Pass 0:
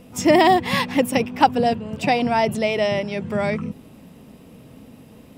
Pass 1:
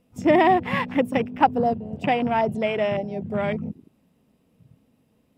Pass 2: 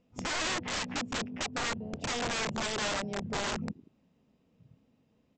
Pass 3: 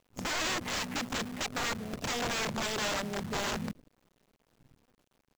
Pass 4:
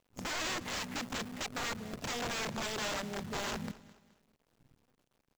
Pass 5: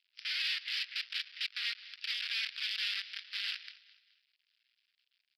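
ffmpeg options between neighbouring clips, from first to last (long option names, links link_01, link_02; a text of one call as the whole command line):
ffmpeg -i in.wav -af "afwtdn=0.0447,volume=-2.5dB" out.wav
ffmpeg -i in.wav -af "acompressor=threshold=-21dB:ratio=6,aresample=16000,aeval=exprs='(mod(13.3*val(0)+1,2)-1)/13.3':channel_layout=same,aresample=44100,volume=-5.5dB" out.wav
ffmpeg -i in.wav -af "acrusher=bits=8:dc=4:mix=0:aa=0.000001" out.wav
ffmpeg -i in.wav -af "aecho=1:1:211|422|633:0.112|0.0426|0.0162,volume=-4dB" out.wav
ffmpeg -i in.wav -af "asuperpass=centerf=4000:order=12:qfactor=0.53,aresample=11025,aresample=44100,aexciter=amount=1.2:drive=9.9:freq=2400,volume=-1dB" out.wav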